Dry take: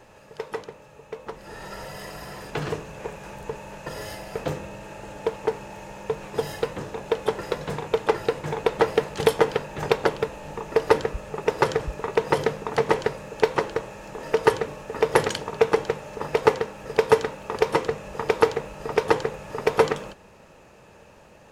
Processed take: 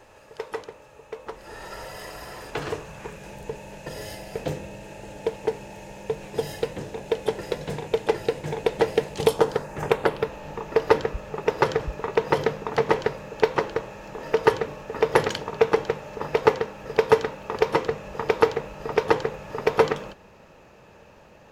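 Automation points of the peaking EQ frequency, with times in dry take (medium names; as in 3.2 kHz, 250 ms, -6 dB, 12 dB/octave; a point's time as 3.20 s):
peaking EQ -9.5 dB 0.68 oct
2.75 s 170 Hz
3.25 s 1.2 kHz
9.08 s 1.2 kHz
10.32 s 9.1 kHz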